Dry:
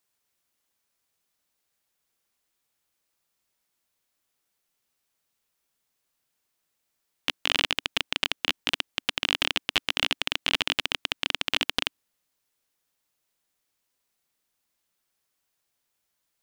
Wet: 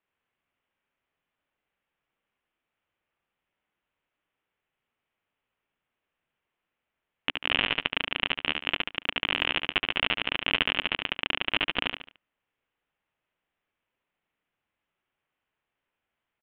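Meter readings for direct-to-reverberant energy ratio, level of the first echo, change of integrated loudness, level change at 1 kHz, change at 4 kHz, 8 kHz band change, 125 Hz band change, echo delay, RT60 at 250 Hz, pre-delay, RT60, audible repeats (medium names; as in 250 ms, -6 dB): no reverb, -5.0 dB, -0.5 dB, +1.5 dB, -2.0 dB, under -35 dB, +1.5 dB, 72 ms, no reverb, no reverb, no reverb, 4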